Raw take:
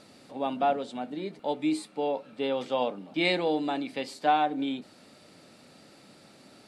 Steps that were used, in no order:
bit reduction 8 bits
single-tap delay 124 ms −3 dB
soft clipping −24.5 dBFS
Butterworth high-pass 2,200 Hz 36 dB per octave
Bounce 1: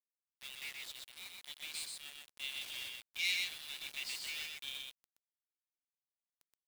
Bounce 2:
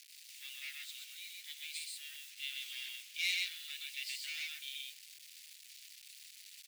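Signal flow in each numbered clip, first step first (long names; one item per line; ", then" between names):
soft clipping, then Butterworth high-pass, then bit reduction, then single-tap delay
single-tap delay, then soft clipping, then bit reduction, then Butterworth high-pass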